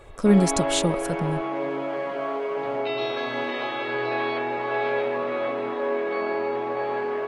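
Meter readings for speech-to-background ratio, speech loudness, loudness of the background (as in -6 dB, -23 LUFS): 4.5 dB, -23.0 LUFS, -27.5 LUFS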